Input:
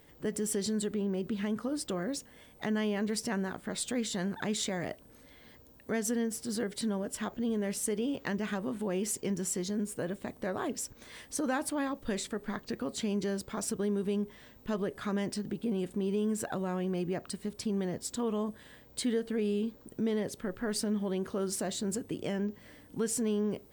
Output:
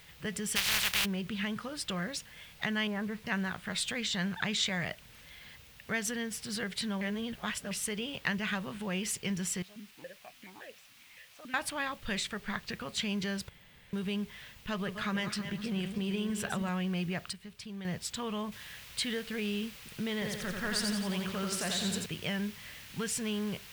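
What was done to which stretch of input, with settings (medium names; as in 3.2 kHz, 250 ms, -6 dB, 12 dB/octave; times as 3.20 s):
0.55–1.04 s: spectral contrast reduction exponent 0.15
2.87–3.27 s: low-pass 1.6 kHz 24 dB/octave
4.00–4.66 s: low-pass 8.1 kHz 24 dB/octave
7.01–7.71 s: reverse
9.62–11.54 s: stepped vowel filter 7.1 Hz
13.49–13.93 s: room tone
14.70–16.69 s: backward echo that repeats 160 ms, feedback 46%, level -8 dB
17.33–17.85 s: gain -8.5 dB
18.52 s: noise floor step -61 dB -53 dB
20.13–22.06 s: feedback delay 87 ms, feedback 56%, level -4 dB
whole clip: FFT filter 180 Hz 0 dB, 270 Hz -14 dB, 2.7 kHz +8 dB, 7.6 kHz -4 dB; trim +2.5 dB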